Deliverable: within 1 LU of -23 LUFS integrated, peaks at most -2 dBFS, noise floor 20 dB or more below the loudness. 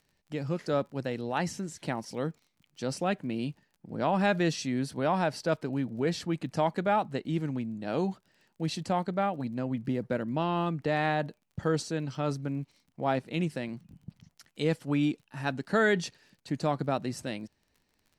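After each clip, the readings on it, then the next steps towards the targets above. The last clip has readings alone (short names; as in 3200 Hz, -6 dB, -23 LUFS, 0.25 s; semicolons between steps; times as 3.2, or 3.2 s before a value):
ticks 32/s; loudness -31.5 LUFS; peak -13.5 dBFS; loudness target -23.0 LUFS
-> de-click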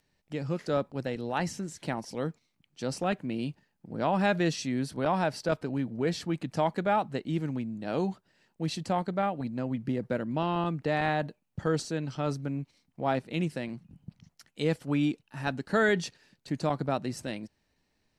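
ticks 0.11/s; loudness -31.5 LUFS; peak -13.5 dBFS; loudness target -23.0 LUFS
-> gain +8.5 dB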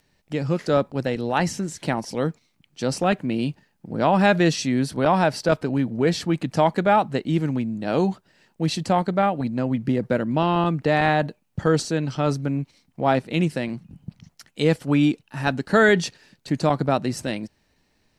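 loudness -23.0 LUFS; peak -5.0 dBFS; noise floor -68 dBFS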